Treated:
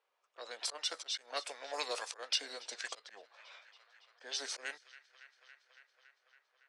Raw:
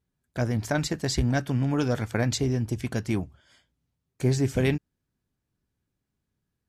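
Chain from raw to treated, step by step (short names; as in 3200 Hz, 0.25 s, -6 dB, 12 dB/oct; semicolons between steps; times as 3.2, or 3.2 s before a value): on a send: thin delay 0.28 s, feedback 68%, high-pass 1700 Hz, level -24 dB; on the sum: formant shift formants -5 st; bell 1300 Hz -3.5 dB 1.2 oct; auto swell 0.262 s; elliptic high-pass 500 Hz, stop band 80 dB; high shelf 3700 Hz +8.5 dB; low-pass opened by the level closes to 2100 Hz, open at -34 dBFS; three-band squash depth 40%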